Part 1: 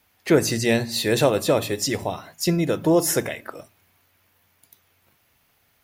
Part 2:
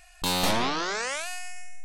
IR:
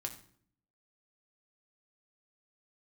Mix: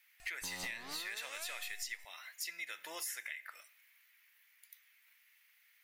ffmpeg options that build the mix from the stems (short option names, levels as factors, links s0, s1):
-filter_complex "[0:a]highpass=f=2000:t=q:w=3.6,volume=0.282,asplit=3[s0][s1][s2];[s1]volume=0.447[s3];[1:a]adelay=200,volume=0.596[s4];[s2]apad=whole_len=90358[s5];[s4][s5]sidechaincompress=threshold=0.0112:ratio=8:attack=26:release=390[s6];[2:a]atrim=start_sample=2205[s7];[s3][s7]afir=irnorm=-1:irlink=0[s8];[s0][s6][s8]amix=inputs=3:normalize=0,highshelf=f=11000:g=5.5,acompressor=threshold=0.0112:ratio=10"